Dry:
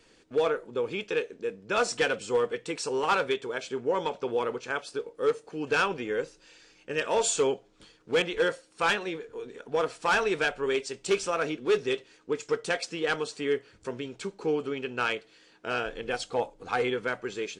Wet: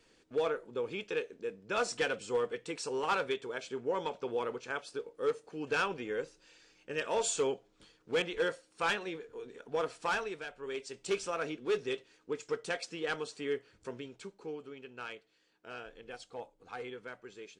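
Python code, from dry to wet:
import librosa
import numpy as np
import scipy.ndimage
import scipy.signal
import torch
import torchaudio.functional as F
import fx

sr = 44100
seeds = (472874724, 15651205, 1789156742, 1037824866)

y = fx.gain(x, sr, db=fx.line((10.05, -6.0), (10.45, -16.5), (10.98, -7.0), (13.94, -7.0), (14.59, -15.0)))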